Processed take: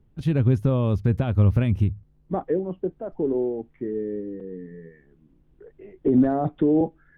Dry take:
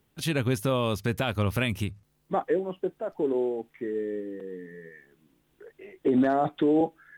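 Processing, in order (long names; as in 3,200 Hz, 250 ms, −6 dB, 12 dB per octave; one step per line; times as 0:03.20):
spectral tilt −4.5 dB per octave
level −4 dB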